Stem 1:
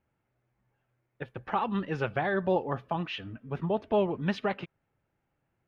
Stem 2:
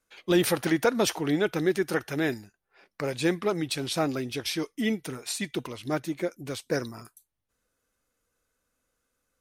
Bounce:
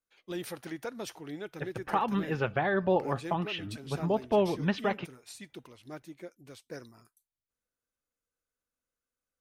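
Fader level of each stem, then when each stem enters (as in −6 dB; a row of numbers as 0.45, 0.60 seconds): +0.5, −15.0 decibels; 0.40, 0.00 seconds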